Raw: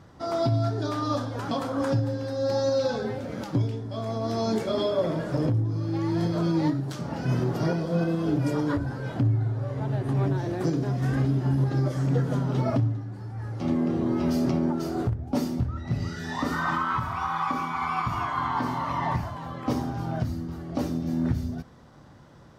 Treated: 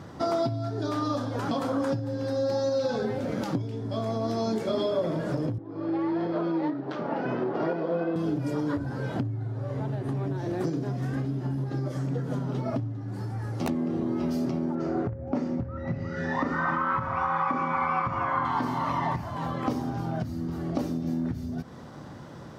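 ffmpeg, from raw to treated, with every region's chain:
ffmpeg -i in.wav -filter_complex "[0:a]asettb=1/sr,asplit=3[link_01][link_02][link_03];[link_01]atrim=end=5.584[link_04];[link_02]atrim=start=5.58:end=8.16,asetpts=PTS-STARTPTS,afade=type=in:duration=0.004:curve=qsin,afade=type=out:start_time=2.576:duration=0.004:curve=qsin,adynamicsmooth=sensitivity=1:basefreq=2200,highpass=360,lowpass=4900[link_05];[link_03]atrim=start=8.156[link_06];[link_04][link_05]acrossfade=duration=0.004:curve1=hsin:curve2=qsin[link_07];[link_07][link_06]acrossfade=duration=0.004:curve1=qsin:curve2=hsin,asettb=1/sr,asplit=3[link_08][link_09][link_10];[link_08]atrim=end=13.084[link_11];[link_09]atrim=start=13.08:end=13.7,asetpts=PTS-STARTPTS,afade=type=in:duration=0.004:curve=qsin,afade=type=out:start_time=0.616:duration=0.004:curve=qsin,highshelf=frequency=5900:gain=7.5,aeval=exprs='(mod(8.91*val(0)+1,2)-1)/8.91':channel_layout=same[link_12];[link_10]atrim=start=13.696[link_13];[link_11][link_12]acrossfade=duration=0.004:curve1=hsin:curve2=qsin[link_14];[link_14][link_13]acrossfade=duration=0.004:curve1=qsin:curve2=hsin,asettb=1/sr,asplit=3[link_15][link_16][link_17];[link_15]atrim=end=14.754[link_18];[link_16]atrim=start=14.75:end=18.45,asetpts=PTS-STARTPTS,afade=type=in:duration=0.004:curve=qsin,afade=type=out:start_time=3.696:duration=0.004:curve=qsin,lowpass=frequency=6700:width=0.5412,lowpass=frequency=6700:width=1.3066,highshelf=frequency=2700:width_type=q:width=1.5:gain=-8,aeval=exprs='val(0)+0.0112*sin(2*PI*540*n/s)':channel_layout=same[link_19];[link_17]atrim=start=18.446[link_20];[link_18][link_19]acrossfade=duration=0.004:curve1=hsin:curve2=qsin[link_21];[link_21][link_20]acrossfade=duration=0.004:curve1=qsin:curve2=hsin,lowshelf=frequency=390:gain=8,acompressor=threshold=-30dB:ratio=6,highpass=frequency=250:poles=1,volume=7dB" out.wav

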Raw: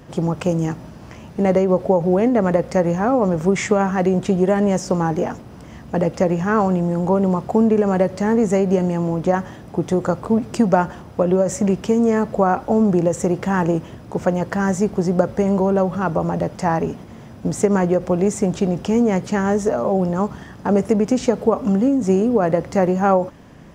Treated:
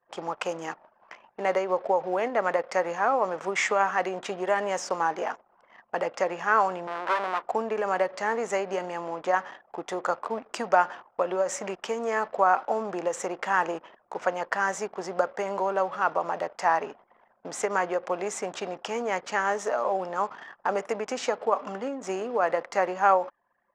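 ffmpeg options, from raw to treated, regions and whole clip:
ffmpeg -i in.wav -filter_complex "[0:a]asettb=1/sr,asplit=3[link_01][link_02][link_03];[link_01]atrim=end=6.874[link_04];[link_02]atrim=start=6.87:end=7.43,asetpts=PTS-STARTPTS,afade=type=in:duration=0.004:curve=qsin,afade=type=out:start_time=0.556:duration=0.004:curve=qsin,lowpass=3200,aeval=exprs='abs(val(0))':channel_layout=same[link_05];[link_03]atrim=start=7.426[link_06];[link_04][link_05]acrossfade=duration=0.004:curve1=hsin:curve2=qsin[link_07];[link_07][link_06]acrossfade=duration=0.004:curve1=qsin:curve2=hsin,highpass=920,aemphasis=mode=reproduction:type=50kf,anlmdn=0.0398,volume=2dB" out.wav

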